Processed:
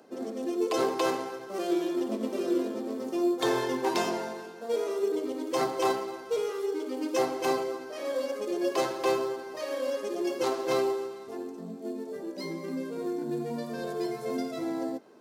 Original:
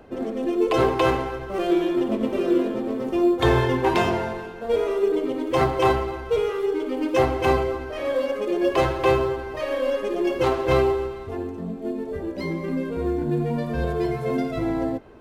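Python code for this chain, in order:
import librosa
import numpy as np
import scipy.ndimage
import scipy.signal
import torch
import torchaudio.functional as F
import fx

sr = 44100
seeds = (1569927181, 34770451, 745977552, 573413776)

y = scipy.signal.sosfilt(scipy.signal.butter(4, 190.0, 'highpass', fs=sr, output='sos'), x)
y = fx.high_shelf_res(y, sr, hz=3800.0, db=8.5, q=1.5)
y = F.gain(torch.from_numpy(y), -7.0).numpy()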